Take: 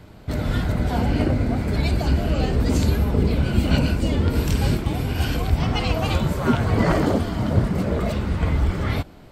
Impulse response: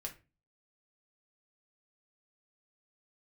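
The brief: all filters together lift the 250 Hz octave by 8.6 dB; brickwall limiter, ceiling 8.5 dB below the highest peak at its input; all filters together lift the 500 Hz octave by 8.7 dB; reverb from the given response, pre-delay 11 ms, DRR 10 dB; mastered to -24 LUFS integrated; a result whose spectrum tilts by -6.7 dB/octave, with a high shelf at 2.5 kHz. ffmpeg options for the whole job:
-filter_complex "[0:a]equalizer=f=250:t=o:g=8.5,equalizer=f=500:t=o:g=8,highshelf=f=2500:g=5.5,alimiter=limit=0.422:level=0:latency=1,asplit=2[s0][s1];[1:a]atrim=start_sample=2205,adelay=11[s2];[s1][s2]afir=irnorm=-1:irlink=0,volume=0.398[s3];[s0][s3]amix=inputs=2:normalize=0,volume=0.473"

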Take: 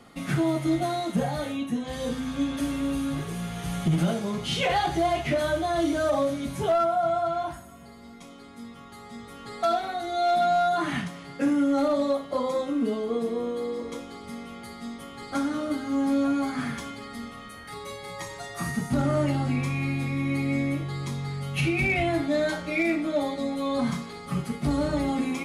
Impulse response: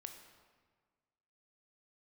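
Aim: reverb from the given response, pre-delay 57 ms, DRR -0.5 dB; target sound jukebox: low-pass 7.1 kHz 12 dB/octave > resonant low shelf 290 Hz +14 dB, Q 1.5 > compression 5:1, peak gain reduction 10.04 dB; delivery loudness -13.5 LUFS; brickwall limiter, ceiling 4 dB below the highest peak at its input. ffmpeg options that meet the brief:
-filter_complex "[0:a]alimiter=limit=0.0841:level=0:latency=1,asplit=2[s0][s1];[1:a]atrim=start_sample=2205,adelay=57[s2];[s1][s2]afir=irnorm=-1:irlink=0,volume=1.88[s3];[s0][s3]amix=inputs=2:normalize=0,lowpass=7100,lowshelf=f=290:t=q:w=1.5:g=14,acompressor=threshold=0.2:ratio=5,volume=2.11"

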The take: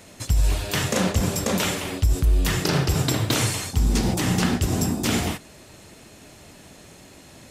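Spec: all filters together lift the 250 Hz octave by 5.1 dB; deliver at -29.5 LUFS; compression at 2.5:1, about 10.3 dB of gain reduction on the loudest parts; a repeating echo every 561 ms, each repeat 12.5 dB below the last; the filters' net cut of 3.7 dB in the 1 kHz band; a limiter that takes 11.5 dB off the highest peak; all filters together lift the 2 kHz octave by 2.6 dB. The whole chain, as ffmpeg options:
-af "equalizer=f=250:t=o:g=7,equalizer=f=1000:t=o:g=-7,equalizer=f=2000:t=o:g=5,acompressor=threshold=0.0316:ratio=2.5,alimiter=level_in=1.41:limit=0.0631:level=0:latency=1,volume=0.708,aecho=1:1:561|1122|1683:0.237|0.0569|0.0137,volume=2.24"

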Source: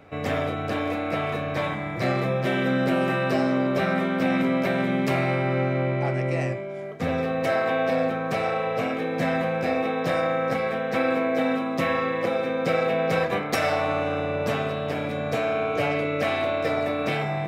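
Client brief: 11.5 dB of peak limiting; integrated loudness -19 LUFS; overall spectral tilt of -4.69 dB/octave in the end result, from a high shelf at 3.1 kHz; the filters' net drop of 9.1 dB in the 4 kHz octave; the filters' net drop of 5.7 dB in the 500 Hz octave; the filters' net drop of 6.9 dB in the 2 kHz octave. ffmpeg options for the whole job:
-af "equalizer=f=500:t=o:g=-6.5,equalizer=f=2000:t=o:g=-5,highshelf=f=3100:g=-6,equalizer=f=4000:t=o:g=-5.5,volume=5.62,alimiter=limit=0.299:level=0:latency=1"

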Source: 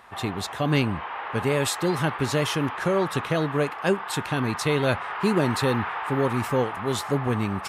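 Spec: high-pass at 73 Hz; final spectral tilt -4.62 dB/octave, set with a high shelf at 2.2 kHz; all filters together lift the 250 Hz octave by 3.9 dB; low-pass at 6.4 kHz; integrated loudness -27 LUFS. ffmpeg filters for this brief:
-af "highpass=73,lowpass=6400,equalizer=f=250:t=o:g=5,highshelf=f=2200:g=5.5,volume=0.631"

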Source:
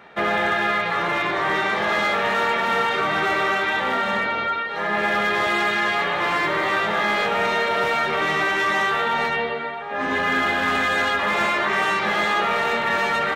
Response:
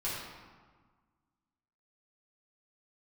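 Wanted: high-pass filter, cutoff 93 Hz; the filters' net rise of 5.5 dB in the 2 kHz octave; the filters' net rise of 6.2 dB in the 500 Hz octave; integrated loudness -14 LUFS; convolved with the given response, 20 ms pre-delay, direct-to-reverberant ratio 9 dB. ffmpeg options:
-filter_complex "[0:a]highpass=93,equalizer=f=500:t=o:g=7.5,equalizer=f=2000:t=o:g=6,asplit=2[s0][s1];[1:a]atrim=start_sample=2205,adelay=20[s2];[s1][s2]afir=irnorm=-1:irlink=0,volume=0.2[s3];[s0][s3]amix=inputs=2:normalize=0,volume=1.19"

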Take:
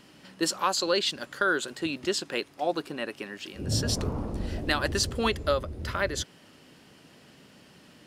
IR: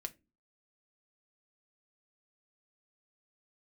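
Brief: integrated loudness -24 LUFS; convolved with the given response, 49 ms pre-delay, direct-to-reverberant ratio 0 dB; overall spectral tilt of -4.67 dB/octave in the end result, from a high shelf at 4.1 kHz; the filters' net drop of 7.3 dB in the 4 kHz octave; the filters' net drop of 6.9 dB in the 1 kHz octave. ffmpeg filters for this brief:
-filter_complex "[0:a]equalizer=f=1000:t=o:g=-9,equalizer=f=4000:t=o:g=-6,highshelf=f=4100:g=-4.5,asplit=2[s0][s1];[1:a]atrim=start_sample=2205,adelay=49[s2];[s1][s2]afir=irnorm=-1:irlink=0,volume=1.33[s3];[s0][s3]amix=inputs=2:normalize=0,volume=1.88"

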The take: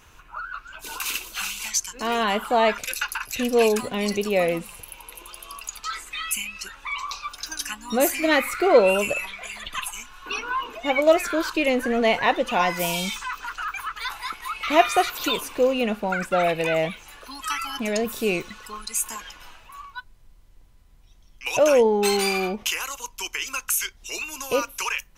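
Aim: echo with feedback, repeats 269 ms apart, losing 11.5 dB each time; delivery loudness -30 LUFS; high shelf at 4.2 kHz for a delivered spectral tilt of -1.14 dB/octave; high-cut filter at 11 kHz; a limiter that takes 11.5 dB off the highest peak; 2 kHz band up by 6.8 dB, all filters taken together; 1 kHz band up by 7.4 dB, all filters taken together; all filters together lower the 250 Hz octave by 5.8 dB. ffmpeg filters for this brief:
-af "lowpass=11000,equalizer=f=250:t=o:g=-8.5,equalizer=f=1000:t=o:g=9,equalizer=f=2000:t=o:g=5.5,highshelf=f=4200:g=3,alimiter=limit=0.316:level=0:latency=1,aecho=1:1:269|538|807:0.266|0.0718|0.0194,volume=0.398"

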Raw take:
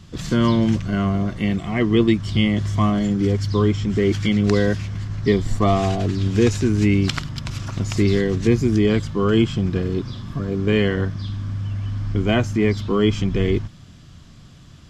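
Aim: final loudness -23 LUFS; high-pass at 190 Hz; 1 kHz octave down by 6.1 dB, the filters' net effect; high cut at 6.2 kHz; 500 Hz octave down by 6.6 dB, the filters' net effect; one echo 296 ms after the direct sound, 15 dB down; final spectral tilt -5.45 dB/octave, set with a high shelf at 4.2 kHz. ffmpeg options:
-af "highpass=190,lowpass=6200,equalizer=f=500:t=o:g=-8,equalizer=f=1000:t=o:g=-5,highshelf=f=4200:g=-4.5,aecho=1:1:296:0.178,volume=1.26"

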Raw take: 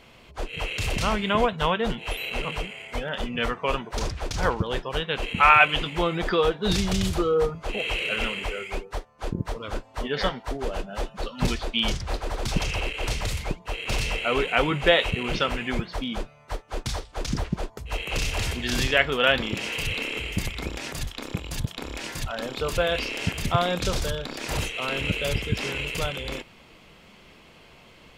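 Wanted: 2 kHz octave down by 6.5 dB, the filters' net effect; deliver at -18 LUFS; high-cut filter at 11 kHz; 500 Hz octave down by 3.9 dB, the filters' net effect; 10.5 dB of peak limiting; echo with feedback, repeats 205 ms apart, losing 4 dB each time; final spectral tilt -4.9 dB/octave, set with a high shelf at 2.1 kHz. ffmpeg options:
-af "lowpass=11000,equalizer=f=500:t=o:g=-4,equalizer=f=2000:t=o:g=-6.5,highshelf=f=2100:g=-3.5,alimiter=limit=0.133:level=0:latency=1,aecho=1:1:205|410|615|820|1025|1230|1435|1640|1845:0.631|0.398|0.25|0.158|0.0994|0.0626|0.0394|0.0249|0.0157,volume=3.76"

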